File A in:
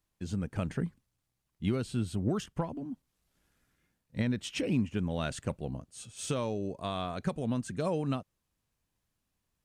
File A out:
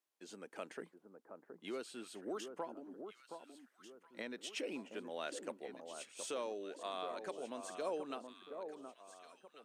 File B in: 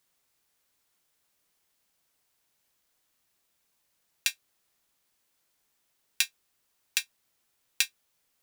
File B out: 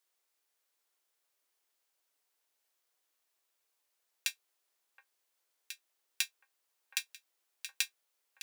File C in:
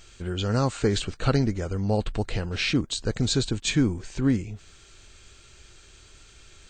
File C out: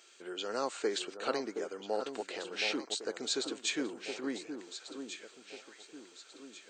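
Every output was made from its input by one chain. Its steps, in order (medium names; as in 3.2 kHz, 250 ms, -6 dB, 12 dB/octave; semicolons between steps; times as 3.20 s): high-pass 340 Hz 24 dB/octave; on a send: echo whose repeats swap between lows and highs 721 ms, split 1.3 kHz, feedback 62%, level -7 dB; on the sum: trim -6.5 dB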